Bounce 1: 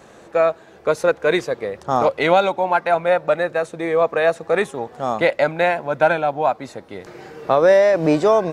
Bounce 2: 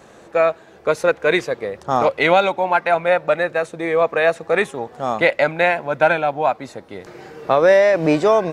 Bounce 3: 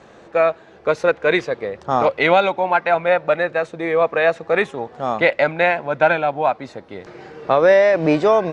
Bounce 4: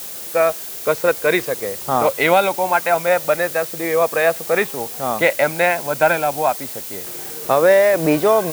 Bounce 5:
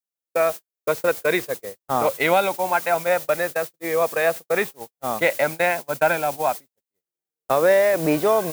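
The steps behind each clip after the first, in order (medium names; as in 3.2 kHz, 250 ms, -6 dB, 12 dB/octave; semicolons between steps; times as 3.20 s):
dynamic bell 2.3 kHz, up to +5 dB, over -33 dBFS, Q 1.3
low-pass 5.1 kHz 12 dB/octave
added noise blue -31 dBFS
gate -22 dBFS, range -58 dB; trim -4 dB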